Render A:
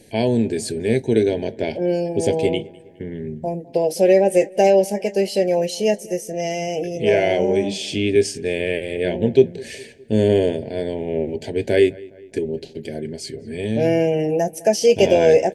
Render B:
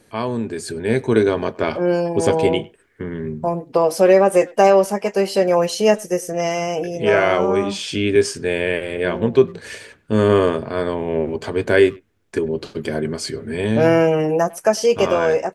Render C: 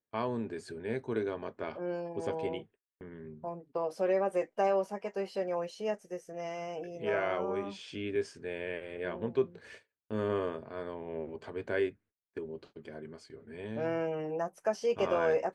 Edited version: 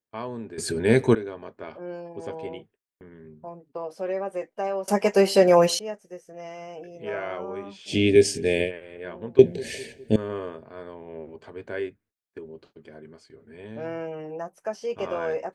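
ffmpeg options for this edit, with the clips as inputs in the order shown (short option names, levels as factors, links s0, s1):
-filter_complex "[1:a]asplit=2[s0][s1];[0:a]asplit=2[s2][s3];[2:a]asplit=5[s4][s5][s6][s7][s8];[s4]atrim=end=0.582[s9];[s0]atrim=start=0.578:end=1.152[s10];[s5]atrim=start=1.148:end=4.882[s11];[s1]atrim=start=4.878:end=5.792[s12];[s6]atrim=start=5.788:end=7.95[s13];[s2]atrim=start=7.85:end=8.72[s14];[s7]atrim=start=8.62:end=9.392[s15];[s3]atrim=start=9.388:end=10.162[s16];[s8]atrim=start=10.158[s17];[s9][s10]acrossfade=d=0.004:c1=hsin:c2=hsin[s18];[s18][s11]acrossfade=d=0.004:c1=hsin:c2=hsin[s19];[s19][s12]acrossfade=d=0.004:c1=hsin:c2=hsin[s20];[s20][s13]acrossfade=d=0.004:c1=hsin:c2=hsin[s21];[s21][s14]acrossfade=d=0.1:c1=tri:c2=tri[s22];[s22][s15]acrossfade=d=0.1:c1=tri:c2=tri[s23];[s23][s16]acrossfade=d=0.004:c1=hsin:c2=hsin[s24];[s24][s17]acrossfade=d=0.004:c1=hsin:c2=hsin"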